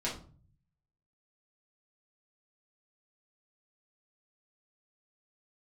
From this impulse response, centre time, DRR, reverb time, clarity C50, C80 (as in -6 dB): 27 ms, -6.5 dB, 0.40 s, 7.5 dB, 13.5 dB